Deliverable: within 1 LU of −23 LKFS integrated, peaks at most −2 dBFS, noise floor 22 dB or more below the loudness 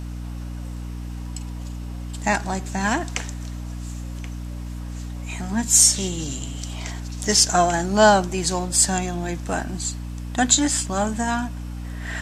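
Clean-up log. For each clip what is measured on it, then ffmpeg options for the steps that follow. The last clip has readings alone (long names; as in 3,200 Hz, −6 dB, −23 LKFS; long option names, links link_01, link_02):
mains hum 60 Hz; hum harmonics up to 300 Hz; level of the hum −29 dBFS; integrated loudness −20.5 LKFS; sample peak −2.0 dBFS; target loudness −23.0 LKFS
→ -af "bandreject=frequency=60:width_type=h:width=4,bandreject=frequency=120:width_type=h:width=4,bandreject=frequency=180:width_type=h:width=4,bandreject=frequency=240:width_type=h:width=4,bandreject=frequency=300:width_type=h:width=4"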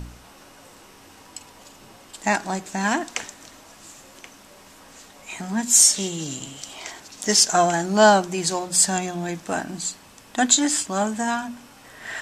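mains hum none found; integrated loudness −20.5 LKFS; sample peak −2.0 dBFS; target loudness −23.0 LKFS
→ -af "volume=-2.5dB"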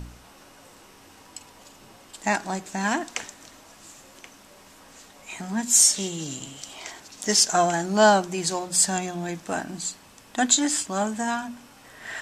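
integrated loudness −23.0 LKFS; sample peak −4.5 dBFS; background noise floor −51 dBFS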